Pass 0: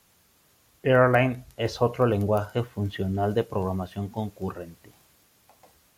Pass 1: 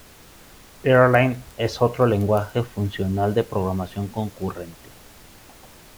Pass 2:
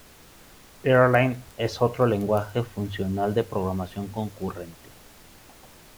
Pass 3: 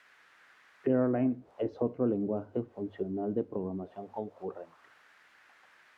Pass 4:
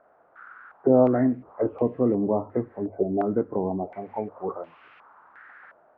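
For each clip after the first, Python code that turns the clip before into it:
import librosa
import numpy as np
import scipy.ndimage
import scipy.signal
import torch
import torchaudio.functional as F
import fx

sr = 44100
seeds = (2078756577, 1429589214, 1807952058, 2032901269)

y1 = fx.dmg_noise_colour(x, sr, seeds[0], colour='pink', level_db=-51.0)
y1 = F.gain(torch.from_numpy(y1), 4.0).numpy()
y2 = fx.hum_notches(y1, sr, base_hz=50, count=2)
y2 = F.gain(torch.from_numpy(y2), -3.0).numpy()
y3 = fx.auto_wah(y2, sr, base_hz=280.0, top_hz=1900.0, q=2.6, full_db=-22.5, direction='down')
y4 = fx.freq_compress(y3, sr, knee_hz=1000.0, ratio=1.5)
y4 = fx.filter_held_lowpass(y4, sr, hz=2.8, low_hz=660.0, high_hz=2700.0)
y4 = F.gain(torch.from_numpy(y4), 6.5).numpy()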